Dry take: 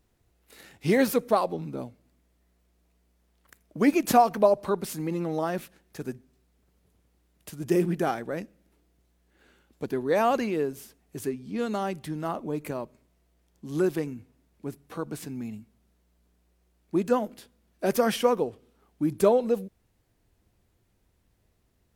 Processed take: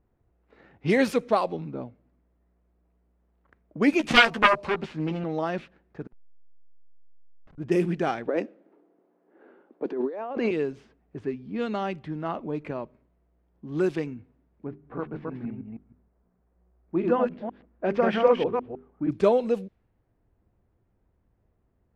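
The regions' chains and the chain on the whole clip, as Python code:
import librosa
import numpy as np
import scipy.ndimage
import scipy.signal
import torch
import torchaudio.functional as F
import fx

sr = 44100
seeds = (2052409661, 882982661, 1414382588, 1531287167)

y = fx.chain(x, sr, fx.self_delay(depth_ms=0.87),
    fx.doubler(ms=13.0, db=-5), at=(3.99, 5.24))
y = fx.chain(y, sr, fx.delta_hold(step_db=-36.0),
    fx.over_compress(threshold_db=-46.0, ratio=-0.5), at=(6.07, 7.58))
y = fx.chain(y, sr, fx.highpass(hz=290.0, slope=24),
    fx.tilt_shelf(db=7.5, hz=1400.0),
    fx.over_compress(threshold_db=-29.0, ratio=-1.0), at=(8.28, 10.51))
y = fx.chain(y, sr, fx.reverse_delay(ms=157, wet_db=-2),
    fx.lowpass(hz=2100.0, slope=12),
    fx.hum_notches(base_hz=50, count=8), at=(14.67, 19.11))
y = scipy.signal.sosfilt(scipy.signal.bessel(2, 6300.0, 'lowpass', norm='mag', fs=sr, output='sos'), y)
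y = fx.env_lowpass(y, sr, base_hz=1300.0, full_db=-19.0)
y = fx.dynamic_eq(y, sr, hz=2600.0, q=1.6, threshold_db=-48.0, ratio=4.0, max_db=5)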